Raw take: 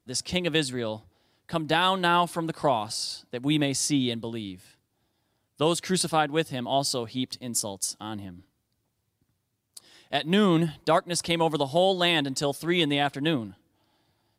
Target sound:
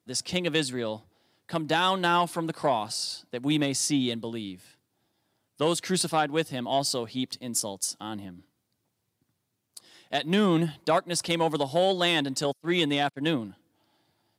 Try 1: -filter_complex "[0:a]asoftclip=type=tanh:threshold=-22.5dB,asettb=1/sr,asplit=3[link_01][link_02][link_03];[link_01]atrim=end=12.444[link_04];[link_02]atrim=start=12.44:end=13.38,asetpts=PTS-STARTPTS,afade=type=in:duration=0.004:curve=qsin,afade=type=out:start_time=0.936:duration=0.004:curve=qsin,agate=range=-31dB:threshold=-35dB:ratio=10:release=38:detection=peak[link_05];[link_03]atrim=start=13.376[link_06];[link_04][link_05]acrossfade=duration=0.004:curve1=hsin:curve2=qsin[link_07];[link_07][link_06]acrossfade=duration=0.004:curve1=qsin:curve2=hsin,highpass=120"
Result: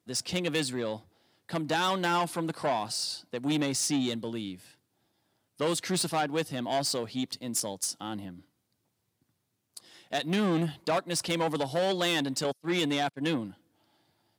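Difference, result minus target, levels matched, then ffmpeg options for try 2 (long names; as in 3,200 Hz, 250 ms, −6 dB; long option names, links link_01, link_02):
soft clipping: distortion +11 dB
-filter_complex "[0:a]asoftclip=type=tanh:threshold=-13dB,asettb=1/sr,asplit=3[link_01][link_02][link_03];[link_01]atrim=end=12.444[link_04];[link_02]atrim=start=12.44:end=13.38,asetpts=PTS-STARTPTS,afade=type=in:duration=0.004:curve=qsin,afade=type=out:start_time=0.936:duration=0.004:curve=qsin,agate=range=-31dB:threshold=-35dB:ratio=10:release=38:detection=peak[link_05];[link_03]atrim=start=13.376[link_06];[link_04][link_05]acrossfade=duration=0.004:curve1=hsin:curve2=qsin[link_07];[link_07][link_06]acrossfade=duration=0.004:curve1=qsin:curve2=hsin,highpass=120"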